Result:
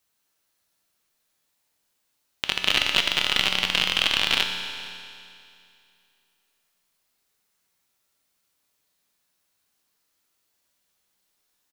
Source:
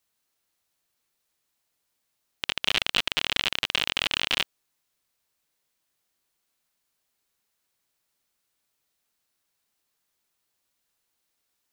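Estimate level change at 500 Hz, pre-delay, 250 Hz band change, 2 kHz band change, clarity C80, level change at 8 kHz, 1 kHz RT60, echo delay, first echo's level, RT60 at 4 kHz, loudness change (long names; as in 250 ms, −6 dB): +3.5 dB, 5 ms, +4.0 dB, +4.0 dB, 6.0 dB, +4.0 dB, 2.5 s, 464 ms, −21.0 dB, 2.5 s, +3.5 dB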